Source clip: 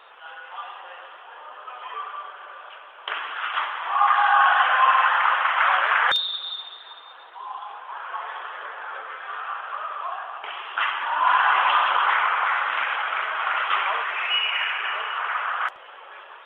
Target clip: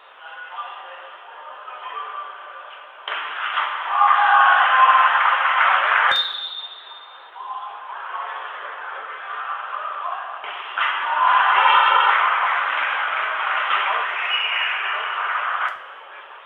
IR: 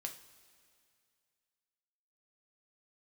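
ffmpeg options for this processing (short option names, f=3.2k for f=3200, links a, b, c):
-filter_complex "[0:a]asettb=1/sr,asplit=3[a][b][c];[a]atrim=end=11.564[d];[b]atrim=start=11.56:end=12.1,asetpts=PTS-STARTPTS,afade=t=in:d=0.004:c=qsin,afade=t=out:st=0.536:d=0.004:c=qsin,aecho=1:1:2.2:0.97,atrim=end_sample=23814[e];[c]atrim=start=12.096[f];[d][e]acrossfade=d=0.004:c1=hsin:c2=qsin[g];[g][f]acrossfade=d=0.004:c1=qsin:c2=hsin[h];[1:a]atrim=start_sample=2205,afade=t=out:st=0.4:d=0.01,atrim=end_sample=18081[i];[h][i]afir=irnorm=-1:irlink=0,volume=5.5dB"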